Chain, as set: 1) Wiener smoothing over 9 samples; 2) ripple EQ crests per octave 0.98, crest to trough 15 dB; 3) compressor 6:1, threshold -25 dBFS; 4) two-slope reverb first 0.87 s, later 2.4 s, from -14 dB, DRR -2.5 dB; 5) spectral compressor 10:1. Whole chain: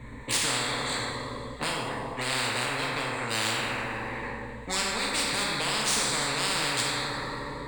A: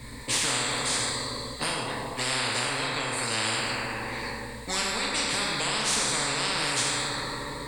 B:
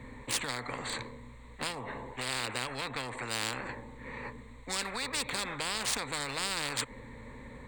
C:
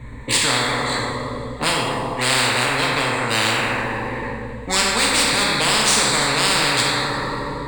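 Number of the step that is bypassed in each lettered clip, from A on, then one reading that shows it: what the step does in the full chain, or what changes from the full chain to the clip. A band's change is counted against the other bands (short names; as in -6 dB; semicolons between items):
1, 8 kHz band +2.5 dB; 4, momentary loudness spread change +5 LU; 3, mean gain reduction 4.5 dB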